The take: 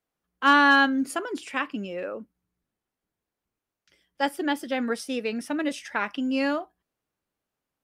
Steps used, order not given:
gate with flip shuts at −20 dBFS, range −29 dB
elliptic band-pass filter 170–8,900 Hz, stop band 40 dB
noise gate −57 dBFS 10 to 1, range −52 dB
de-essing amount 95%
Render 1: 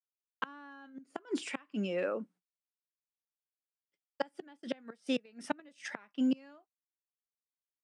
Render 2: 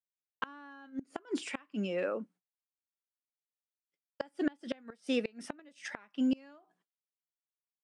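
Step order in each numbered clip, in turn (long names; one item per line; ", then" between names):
de-essing, then gate with flip, then noise gate, then elliptic band-pass filter
de-essing, then elliptic band-pass filter, then noise gate, then gate with flip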